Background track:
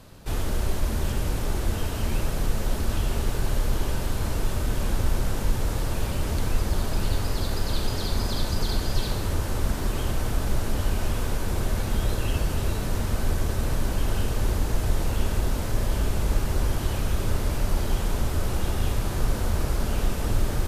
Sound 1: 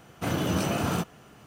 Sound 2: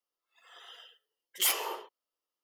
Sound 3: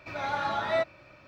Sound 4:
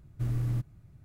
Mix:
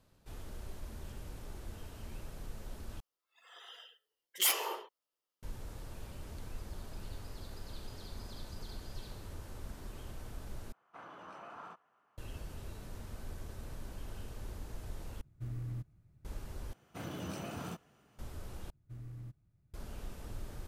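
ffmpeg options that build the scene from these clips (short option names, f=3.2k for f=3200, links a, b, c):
-filter_complex "[1:a]asplit=2[a][b];[4:a]asplit=2[c][d];[0:a]volume=-20dB[e];[a]bandpass=f=1.1k:t=q:w=2.2:csg=0[f];[e]asplit=6[g][h][i][j][k][l];[g]atrim=end=3.004[m];[2:a]atrim=end=2.43,asetpts=PTS-STARTPTS,volume=-1.5dB[n];[h]atrim=start=5.426:end=10.724[o];[f]atrim=end=1.46,asetpts=PTS-STARTPTS,volume=-12.5dB[p];[i]atrim=start=12.176:end=15.214[q];[c]atrim=end=1.04,asetpts=PTS-STARTPTS,volume=-10.5dB[r];[j]atrim=start=16.246:end=16.734[s];[b]atrim=end=1.46,asetpts=PTS-STARTPTS,volume=-15dB[t];[k]atrim=start=18.186:end=18.704[u];[d]atrim=end=1.04,asetpts=PTS-STARTPTS,volume=-17dB[v];[l]atrim=start=19.736[w];[m][n]acrossfade=d=0.004:c1=hsin:c2=hsin[x];[x][o]acrossfade=d=0.004:c1=hsin:c2=hsin[y];[y][p]acrossfade=d=0.004:c1=hsin:c2=hsin[z];[z][q]acrossfade=d=0.004:c1=hsin:c2=hsin[aa];[aa][r]acrossfade=d=0.004:c1=hsin:c2=hsin[ab];[ab][s]acrossfade=d=0.004:c1=hsin:c2=hsin[ac];[ac][t]acrossfade=d=0.004:c1=hsin:c2=hsin[ad];[ad][u]acrossfade=d=0.004:c1=hsin:c2=hsin[ae];[ae][v]acrossfade=d=0.004:c1=hsin:c2=hsin[af];[af][w]acrossfade=d=0.004:c1=hsin:c2=hsin"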